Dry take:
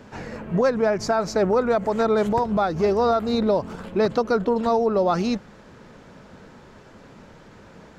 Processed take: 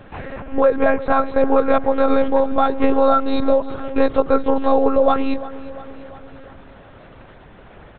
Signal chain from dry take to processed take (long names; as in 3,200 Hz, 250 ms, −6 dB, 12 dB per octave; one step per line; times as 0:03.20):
high-pass filter 210 Hz 12 dB per octave
one-pitch LPC vocoder at 8 kHz 270 Hz
repeating echo 348 ms, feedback 58%, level −18 dB
level +5.5 dB